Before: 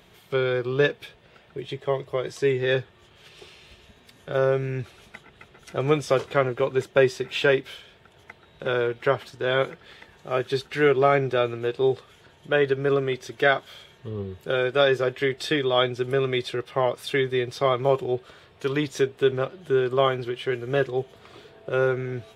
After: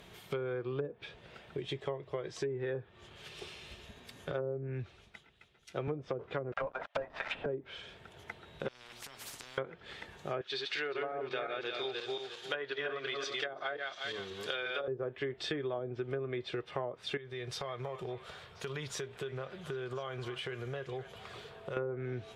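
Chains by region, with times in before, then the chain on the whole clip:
0:04.31–0:05.88: low-pass filter 3,700 Hz 6 dB per octave + multiband upward and downward expander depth 70%
0:06.52–0:07.46: treble cut that deepens with the level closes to 2,400 Hz, closed at −16.5 dBFS + elliptic high-pass filter 600 Hz + leveller curve on the samples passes 5
0:08.68–0:09.58: mains-hum notches 60/120/180/240/300/360/420 Hz + downward compressor 16 to 1, threshold −37 dBFS + every bin compressed towards the loudest bin 10 to 1
0:10.41–0:14.88: feedback delay that plays each chunk backwards 177 ms, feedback 41%, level −2.5 dB + high-pass filter 1,100 Hz 6 dB per octave + parametric band 4,500 Hz +10.5 dB 1.7 octaves
0:17.17–0:21.77: parametric band 300 Hz −12.5 dB 0.48 octaves + downward compressor 4 to 1, threshold −36 dBFS + echo through a band-pass that steps 259 ms, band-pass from 1,100 Hz, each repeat 0.7 octaves, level −10.5 dB
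whole clip: treble cut that deepens with the level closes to 500 Hz, closed at −16 dBFS; downward compressor 5 to 1, threshold −35 dBFS

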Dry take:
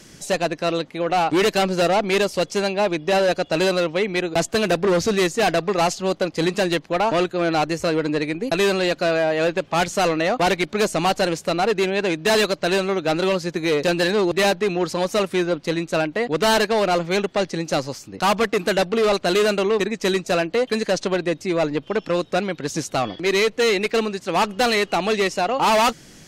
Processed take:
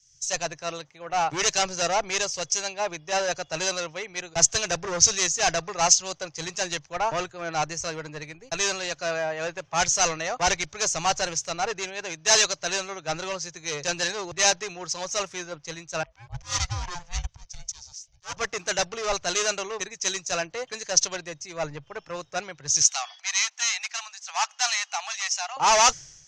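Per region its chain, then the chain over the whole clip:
0:16.03–0:18.37: low-shelf EQ 420 Hz −11.5 dB + volume swells 132 ms + ring modulation 350 Hz
0:22.81–0:25.57: elliptic high-pass filter 750 Hz, stop band 50 dB + multiband upward and downward compressor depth 40%
whole clip: drawn EQ curve 140 Hz 0 dB, 210 Hz −19 dB, 860 Hz −3 dB, 4,300 Hz −1 dB, 6,100 Hz +15 dB, 11,000 Hz −19 dB; multiband upward and downward expander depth 100%; level −2.5 dB

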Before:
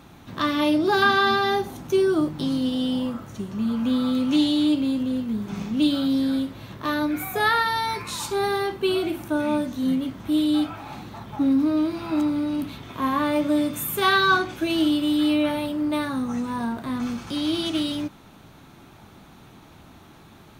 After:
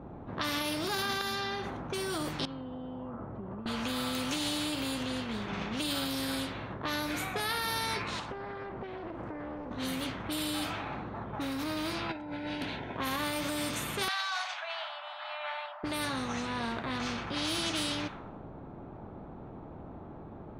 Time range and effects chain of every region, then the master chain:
0:01.21–0:01.70: high-shelf EQ 5,200 Hz +7.5 dB + downward compressor, threshold −26 dBFS
0:02.45–0:03.66: downward compressor 8 to 1, threshold −32 dBFS + head-to-tape spacing loss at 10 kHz 34 dB
0:08.19–0:09.71: downward compressor 20 to 1, threshold −33 dBFS + highs frequency-modulated by the lows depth 0.62 ms
0:12.09–0:12.97: low-shelf EQ 170 Hz −9.5 dB + compressor whose output falls as the input rises −29 dBFS, ratio −0.5 + Butterworth band-reject 1,200 Hz, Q 2.9
0:14.08–0:15.84: Butterworth high-pass 640 Hz 96 dB per octave + high-frequency loss of the air 78 metres
whole clip: low-pass that shuts in the quiet parts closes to 470 Hz, open at −19.5 dBFS; brickwall limiter −18.5 dBFS; every bin compressed towards the loudest bin 2 to 1

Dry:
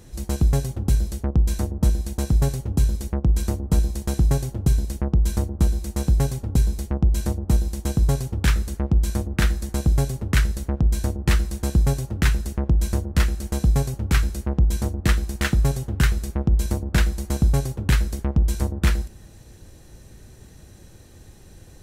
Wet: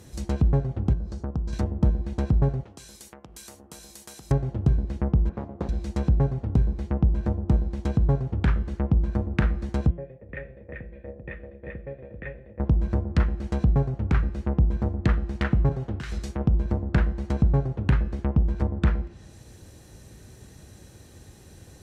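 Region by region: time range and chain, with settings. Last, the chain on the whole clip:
0:00.93–0:01.53: downward compressor 2 to 1, threshold −28 dBFS + low-pass filter 7,600 Hz + flat-topped bell 2,600 Hz −9 dB 1.2 octaves
0:02.63–0:04.31: high-pass filter 1,400 Hz 6 dB per octave + downward compressor 3 to 1, threshold −41 dBFS
0:05.29–0:05.69: lower of the sound and its delayed copy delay 0.79 ms + resonant band-pass 540 Hz, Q 0.71 + highs frequency-modulated by the lows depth 0.45 ms
0:09.90–0:12.60: formant resonators in series e + single-tap delay 390 ms −3.5 dB
0:15.69–0:16.45: low-shelf EQ 230 Hz −5 dB + compressor whose output falls as the input rises −26 dBFS + multiband upward and downward expander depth 40%
whole clip: high-pass filter 58 Hz; treble cut that deepens with the level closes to 1,200 Hz, closed at −19.5 dBFS; hum removal 171.9 Hz, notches 19

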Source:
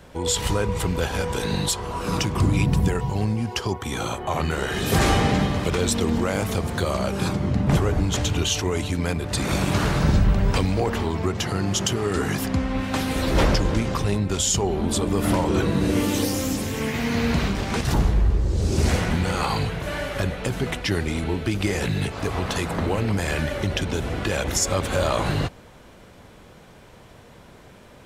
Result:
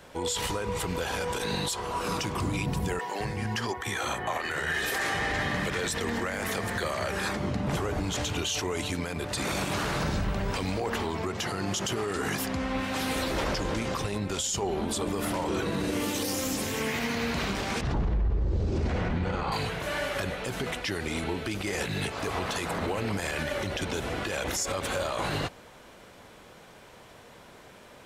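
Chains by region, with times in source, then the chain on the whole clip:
0:02.99–0:07.37: parametric band 1,800 Hz +12 dB 0.37 octaves + multiband delay without the direct sound highs, lows 210 ms, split 260 Hz
0:17.81–0:19.52: Bessel low-pass filter 4,100 Hz + spectral tilt −2.5 dB per octave
whole clip: low-shelf EQ 250 Hz −10.5 dB; brickwall limiter −20.5 dBFS

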